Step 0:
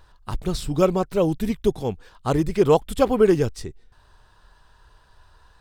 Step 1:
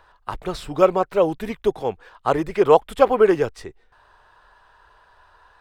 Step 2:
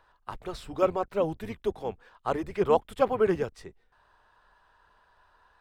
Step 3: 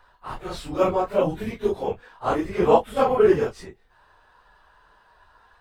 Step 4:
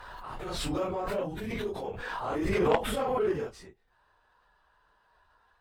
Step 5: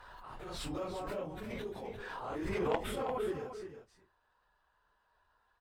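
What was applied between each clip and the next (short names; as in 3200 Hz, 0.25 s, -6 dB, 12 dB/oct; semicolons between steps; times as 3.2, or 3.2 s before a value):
three-band isolator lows -15 dB, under 430 Hz, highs -13 dB, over 2700 Hz; gain +6.5 dB
octaver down 1 oct, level -6 dB; gain -9 dB
phase scrambler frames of 0.1 s; gain +6.5 dB
added harmonics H 3 -9 dB, 5 -18 dB, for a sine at -4 dBFS; backwards sustainer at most 23 dB/s; gain -6 dB
echo 0.348 s -10 dB; gain -8 dB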